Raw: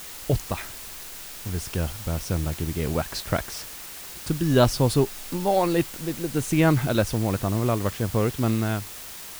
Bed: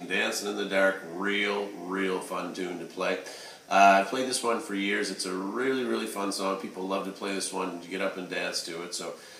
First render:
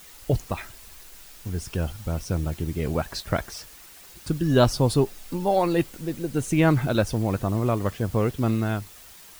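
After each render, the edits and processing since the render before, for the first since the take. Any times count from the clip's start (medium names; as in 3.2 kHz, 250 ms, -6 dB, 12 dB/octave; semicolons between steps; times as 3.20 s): noise reduction 9 dB, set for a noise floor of -39 dBFS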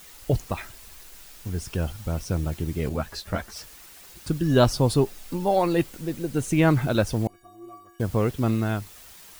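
2.89–3.56 s: three-phase chorus; 7.27–8.00 s: inharmonic resonator 340 Hz, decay 0.73 s, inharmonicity 0.03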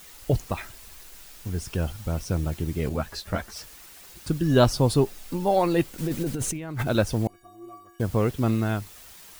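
5.98–6.87 s: compressor with a negative ratio -29 dBFS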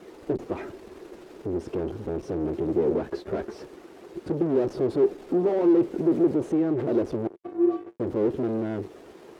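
fuzz box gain 42 dB, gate -49 dBFS; band-pass filter 370 Hz, Q 4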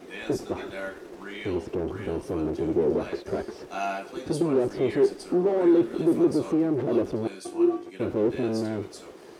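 add bed -11.5 dB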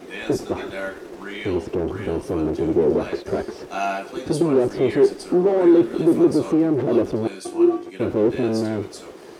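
trim +5.5 dB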